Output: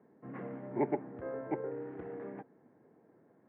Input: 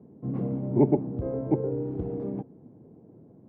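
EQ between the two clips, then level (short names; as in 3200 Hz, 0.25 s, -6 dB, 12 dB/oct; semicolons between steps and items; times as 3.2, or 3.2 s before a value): band-pass 1800 Hz, Q 4.2; air absorption 290 m; +16.0 dB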